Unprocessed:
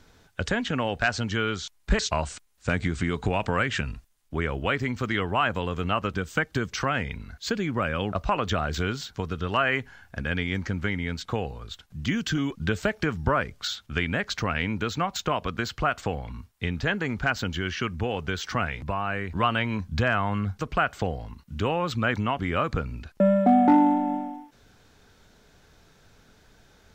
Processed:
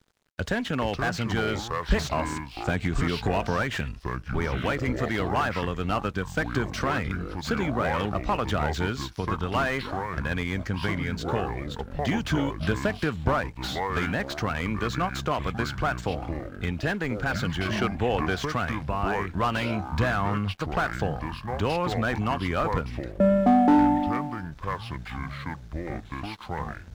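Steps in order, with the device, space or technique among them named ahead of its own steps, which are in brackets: echoes that change speed 0.264 s, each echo -6 st, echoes 2, each echo -6 dB; early transistor amplifier (crossover distortion -51.5 dBFS; slew limiter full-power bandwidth 100 Hz); 17.68–18.43 bell 700 Hz +5 dB 2.8 oct

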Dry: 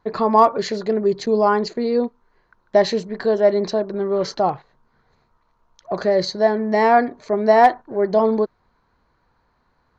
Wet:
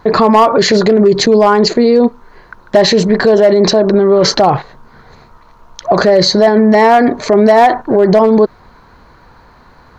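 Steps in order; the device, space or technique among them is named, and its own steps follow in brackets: loud club master (compressor 3:1, threshold -15 dBFS, peak gain reduction 6.5 dB; hard clip -12.5 dBFS, distortion -22 dB; maximiser +23 dB); gain -1 dB

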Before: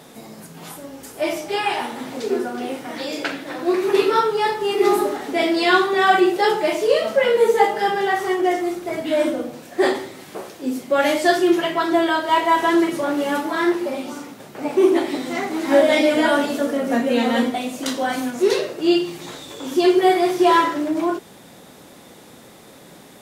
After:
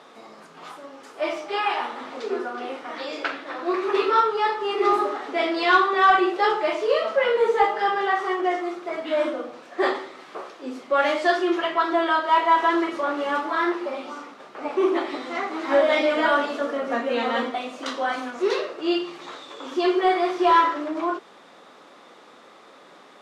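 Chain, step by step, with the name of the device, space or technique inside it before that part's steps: intercom (BPF 370–4300 Hz; bell 1200 Hz +9 dB 0.41 oct; soft clip -3 dBFS, distortion -25 dB); gain -3 dB

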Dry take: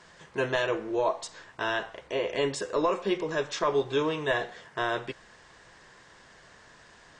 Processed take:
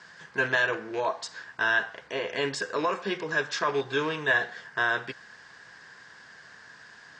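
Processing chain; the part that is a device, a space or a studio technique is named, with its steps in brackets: car door speaker with a rattle (rattling part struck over -37 dBFS, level -33 dBFS; speaker cabinet 110–8100 Hz, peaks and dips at 350 Hz -5 dB, 570 Hz -5 dB, 1600 Hz +10 dB, 4800 Hz +6 dB)

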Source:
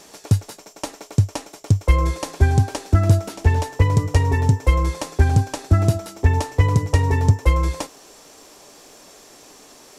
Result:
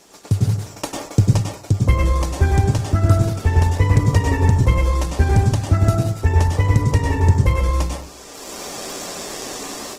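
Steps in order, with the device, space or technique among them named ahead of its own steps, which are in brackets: speakerphone in a meeting room (reverb RT60 0.45 s, pre-delay 95 ms, DRR 0.5 dB; AGC gain up to 16 dB; gain -2.5 dB; Opus 16 kbps 48000 Hz)

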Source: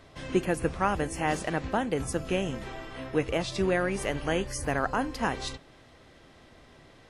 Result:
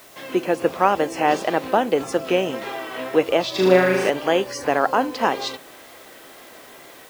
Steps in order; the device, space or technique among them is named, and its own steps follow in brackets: dynamic EQ 1800 Hz, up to -7 dB, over -45 dBFS, Q 1.1; dictaphone (BPF 370–4300 Hz; AGC gain up to 6 dB; wow and flutter; white noise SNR 27 dB); 3.5–4.1 flutter echo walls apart 6.5 m, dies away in 0.93 s; gain +6.5 dB

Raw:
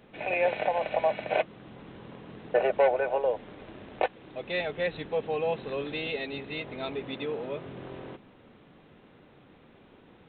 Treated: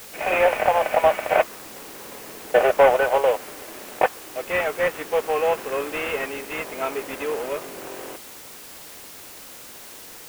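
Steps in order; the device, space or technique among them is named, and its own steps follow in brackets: army field radio (BPF 390–3100 Hz; CVSD 16 kbps; white noise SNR 17 dB); dynamic EQ 1200 Hz, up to +5 dB, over -46 dBFS, Q 1.7; gain +8.5 dB

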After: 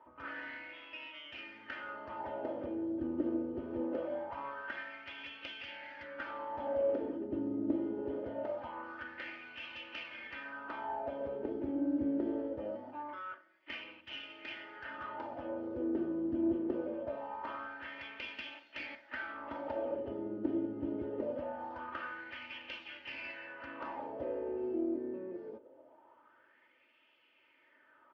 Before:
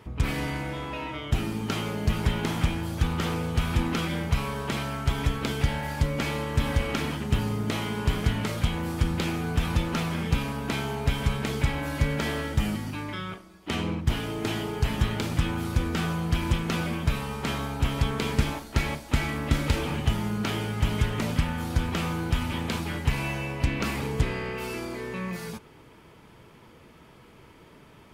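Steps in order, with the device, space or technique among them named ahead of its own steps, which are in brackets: wah-wah guitar rig (wah 0.23 Hz 320–2700 Hz, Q 4; tube stage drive 26 dB, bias 0.45; speaker cabinet 82–4100 Hz, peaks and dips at 190 Hz -9 dB, 270 Hz +5 dB, 520 Hz +7 dB, 1100 Hz -7 dB, 2300 Hz -8 dB, 3800 Hz -10 dB); comb 3.3 ms, depth 62%; gain +2 dB

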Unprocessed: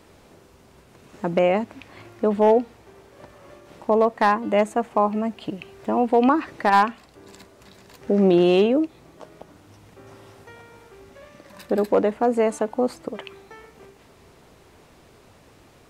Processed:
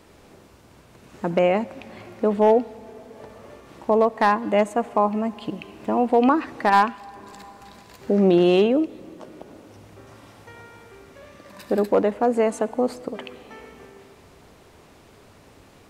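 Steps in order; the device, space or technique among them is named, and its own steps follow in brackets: compressed reverb return (on a send at -4.5 dB: reverb RT60 1.7 s, pre-delay 62 ms + compressor 5:1, threshold -36 dBFS, peak gain reduction 21.5 dB)

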